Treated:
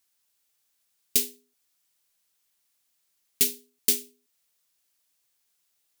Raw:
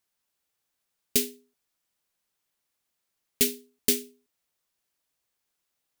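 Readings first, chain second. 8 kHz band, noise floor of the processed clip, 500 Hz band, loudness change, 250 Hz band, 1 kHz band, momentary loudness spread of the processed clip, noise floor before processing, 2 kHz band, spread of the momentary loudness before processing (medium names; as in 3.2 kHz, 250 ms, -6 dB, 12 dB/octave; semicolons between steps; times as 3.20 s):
+1.5 dB, -74 dBFS, -7.5 dB, +1.5 dB, -7.5 dB, no reading, 3 LU, -81 dBFS, -2.5 dB, 3 LU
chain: treble shelf 2.3 kHz +10 dB; in parallel at +1.5 dB: compression, threshold -35 dBFS, peak gain reduction 23.5 dB; on the sum: trim -8.5 dB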